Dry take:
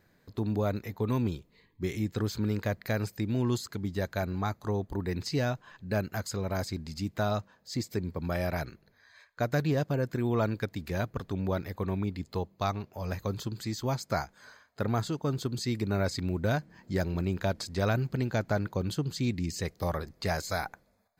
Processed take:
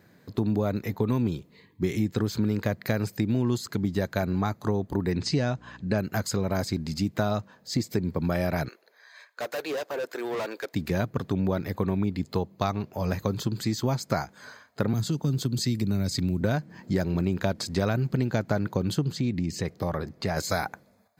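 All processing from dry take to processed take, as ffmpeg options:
-filter_complex "[0:a]asettb=1/sr,asplit=3[s0][s1][s2];[s0]atrim=end=5.124[s3];[s1]atrim=start=5.12:end=5.98,asetpts=PTS-STARTPTS,afade=t=in:d=0.004:c=qsin,afade=t=out:st=0.856:d=0.004:c=qsin,lowpass=f=8600:w=0.5412,lowpass=f=8600:w=1.3066,aeval=exprs='val(0)+0.00178*(sin(2*PI*60*n/s)+sin(2*PI*2*60*n/s)/2+sin(2*PI*3*60*n/s)/3+sin(2*PI*4*60*n/s)/4+sin(2*PI*5*60*n/s)/5)':c=same[s4];[s2]atrim=start=5.976[s5];[s3][s4]acrossfade=d=0.004:c1=hsin:c2=qsin[s6];[s6][s5]acrossfade=d=0.004:c1=qsin:c2=hsin,asettb=1/sr,asplit=3[s7][s8][s9];[s7]atrim=end=8.684[s10];[s8]atrim=start=8.68:end=10.74,asetpts=PTS-STARTPTS,afade=t=in:d=0.004:c=qsin,afade=t=out:st=2.056:d=0.004:c=qsin,highpass=f=440:w=0.5412,highpass=f=440:w=1.3066,asoftclip=type=hard:threshold=0.0158[s11];[s9]atrim=start=10.736[s12];[s10][s11]acrossfade=d=0.004:c1=hsin:c2=qsin[s13];[s13][s12]acrossfade=d=0.004:c1=qsin:c2=hsin,asettb=1/sr,asplit=3[s14][s15][s16];[s14]atrim=end=14.934[s17];[s15]atrim=start=14.93:end=16.41,asetpts=PTS-STARTPTS,afade=t=in:d=0.004:c=qsin,afade=t=out:st=1.476:d=0.004:c=qsin,acrossover=split=270|3000[s18][s19][s20];[s19]acompressor=threshold=0.00501:ratio=4:attack=3.2:release=140:knee=2.83:detection=peak[s21];[s18][s21][s20]amix=inputs=3:normalize=0,highshelf=f=8100:g=3.5[s22];[s16]atrim=start=16.406[s23];[s17][s22]acrossfade=d=0.004:c1=hsin:c2=qsin[s24];[s24][s23]acrossfade=d=0.004:c1=qsin:c2=hsin,asettb=1/sr,asplit=3[s25][s26][s27];[s25]atrim=end=19.124[s28];[s26]atrim=start=19.12:end=20.37,asetpts=PTS-STARTPTS,afade=t=in:d=0.004:c=qsin,afade=t=out:st=1.246:d=0.004:c=qsin,highshelf=f=4300:g=-8,acompressor=threshold=0.02:ratio=2:attack=3.2:release=140:knee=1:detection=peak[s29];[s27]atrim=start=20.366[s30];[s28][s29]acrossfade=d=0.004:c1=hsin:c2=qsin[s31];[s31][s30]acrossfade=d=0.004:c1=qsin:c2=hsin,highpass=130,lowshelf=f=290:g=7,acompressor=threshold=0.0355:ratio=3,volume=2.11"

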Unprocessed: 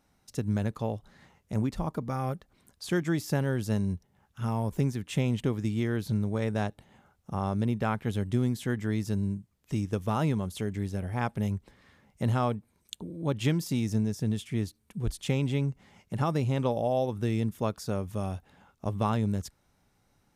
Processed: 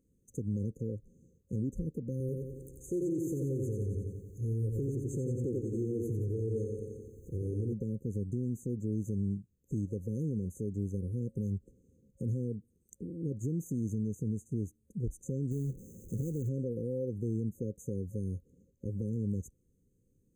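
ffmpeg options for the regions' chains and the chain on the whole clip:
-filter_complex "[0:a]asettb=1/sr,asplit=3[s0][s1][s2];[s0]atrim=end=2.204[s3];[s1]atrim=start=2.2:end=7.73,asetpts=PTS-STARTPTS,afade=t=in:d=0.004:c=qsin,afade=t=out:st=5.526:d=0.004:c=qsin,acompressor=mode=upward:threshold=0.0126:ratio=2.5:attack=3.2:release=140:knee=2.83:detection=peak,aecho=1:1:2.5:0.68,atrim=end_sample=243873,aecho=1:1:89|178|267|356|445|534|623|712|801:0.631|0.379|0.227|0.136|0.0818|0.0491|0.0294|0.0177|0.0106,atrim=end_sample=243873[s4];[s2]atrim=start=7.726[s5];[s3][s4]acrossfade=d=0.004:c1=hsin:c2=qsin[s6];[s6][s5]acrossfade=d=0.004:c1=qsin:c2=hsin,asettb=1/sr,asplit=3[s7][s8][s9];[s7]atrim=end=15.514[s10];[s8]atrim=start=15.51:end=16.49,asetpts=PTS-STARTPTS,afade=t=in:d=0.004:c=qsin,afade=t=out:st=0.976:d=0.004:c=qsin,aeval=exprs='val(0)+0.5*0.00891*sgn(val(0))':c=same,acrusher=bits=2:mode=log:mix=0:aa=0.000001[s11];[s9]atrim=start=16.486[s12];[s10][s11]acrossfade=d=0.004:c1=hsin:c2=qsin[s13];[s13][s12]acrossfade=d=0.004:c1=qsin:c2=hsin,afftfilt=real='re*(1-between(b*sr/4096,540,6100))':imag='im*(1-between(b*sr/4096,540,6100))':win_size=4096:overlap=0.75,alimiter=level_in=1.06:limit=0.0631:level=0:latency=1:release=95,volume=0.944,equalizer=f=11000:w=0.84:g=-9,volume=0.841"

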